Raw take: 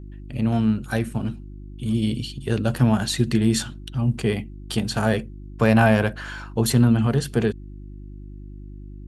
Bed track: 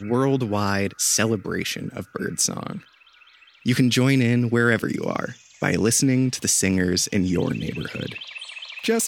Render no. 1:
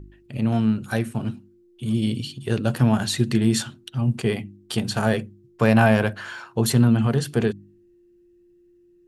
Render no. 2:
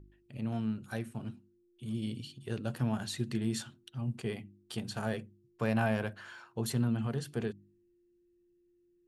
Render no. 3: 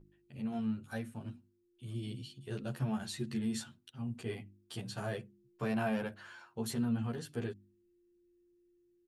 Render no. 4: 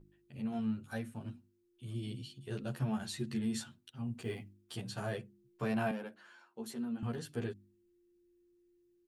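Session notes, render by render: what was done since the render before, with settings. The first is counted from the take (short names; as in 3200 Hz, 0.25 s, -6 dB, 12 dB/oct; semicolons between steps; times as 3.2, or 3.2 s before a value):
de-hum 50 Hz, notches 6
gain -13.5 dB
endless flanger 11.3 ms +0.34 Hz
4.18–4.78 block floating point 7-bit; 5.91–7.03 ladder high-pass 190 Hz, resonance 30%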